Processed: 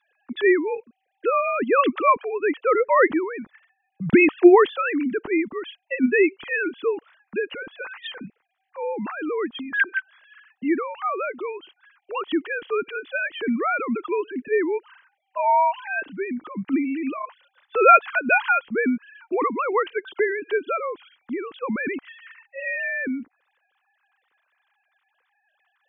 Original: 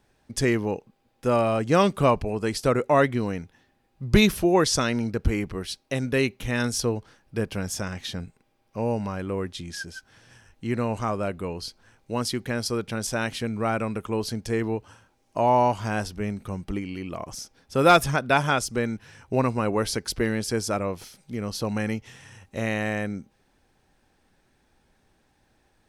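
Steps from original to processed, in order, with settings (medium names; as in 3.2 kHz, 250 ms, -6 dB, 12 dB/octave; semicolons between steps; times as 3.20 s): formants replaced by sine waves; peaking EQ 640 Hz -11.5 dB 0.94 oct; band-stop 2.2 kHz, Q 28; trim +7 dB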